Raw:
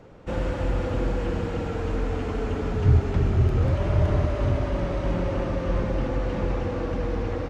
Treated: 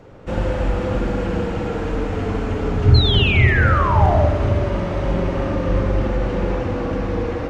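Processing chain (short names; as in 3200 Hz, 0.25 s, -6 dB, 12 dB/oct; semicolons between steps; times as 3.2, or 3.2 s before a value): painted sound fall, 2.94–4.27, 550–4300 Hz -26 dBFS; spring tank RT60 1 s, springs 41/51 ms, chirp 65 ms, DRR 3 dB; gain +4 dB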